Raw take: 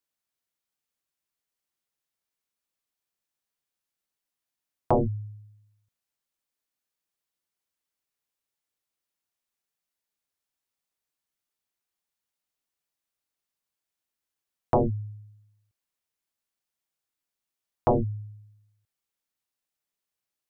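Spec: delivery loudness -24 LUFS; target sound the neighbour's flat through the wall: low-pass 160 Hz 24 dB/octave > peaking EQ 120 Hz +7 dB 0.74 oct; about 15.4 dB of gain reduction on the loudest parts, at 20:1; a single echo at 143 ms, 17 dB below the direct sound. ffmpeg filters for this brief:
-af "acompressor=threshold=0.0224:ratio=20,lowpass=f=160:w=0.5412,lowpass=f=160:w=1.3066,equalizer=f=120:t=o:w=0.74:g=7,aecho=1:1:143:0.141,volume=5.62"

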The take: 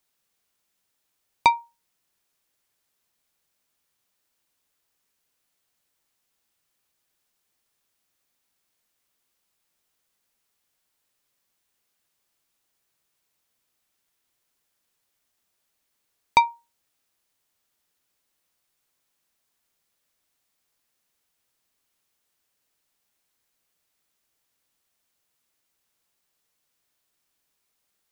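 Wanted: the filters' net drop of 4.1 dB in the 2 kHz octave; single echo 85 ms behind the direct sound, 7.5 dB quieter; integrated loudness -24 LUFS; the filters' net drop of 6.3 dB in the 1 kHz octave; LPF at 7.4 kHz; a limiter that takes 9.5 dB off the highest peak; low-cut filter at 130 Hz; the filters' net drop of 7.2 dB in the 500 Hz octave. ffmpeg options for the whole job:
-af "highpass=130,lowpass=7400,equalizer=f=500:t=o:g=-8,equalizer=f=1000:t=o:g=-4,equalizer=f=2000:t=o:g=-4,alimiter=limit=0.15:level=0:latency=1,aecho=1:1:85:0.422,volume=3.35"

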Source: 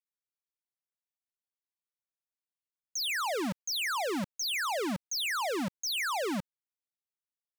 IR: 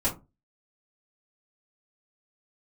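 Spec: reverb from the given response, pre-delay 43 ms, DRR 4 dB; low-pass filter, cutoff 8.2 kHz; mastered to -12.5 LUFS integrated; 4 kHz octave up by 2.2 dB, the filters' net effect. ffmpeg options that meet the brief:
-filter_complex "[0:a]lowpass=8200,equalizer=f=4000:t=o:g=3,asplit=2[s0][s1];[1:a]atrim=start_sample=2205,adelay=43[s2];[s1][s2]afir=irnorm=-1:irlink=0,volume=0.224[s3];[s0][s3]amix=inputs=2:normalize=0,volume=7.08"

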